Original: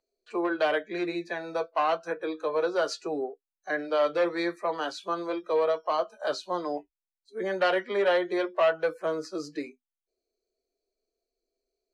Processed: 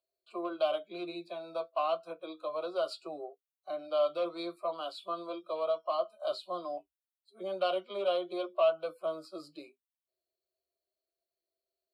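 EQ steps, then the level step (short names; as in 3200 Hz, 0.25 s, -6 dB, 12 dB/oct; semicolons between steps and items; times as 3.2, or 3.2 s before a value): HPF 65 Hz 24 dB/oct; fixed phaser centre 450 Hz, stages 6; fixed phaser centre 1300 Hz, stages 8; 0.0 dB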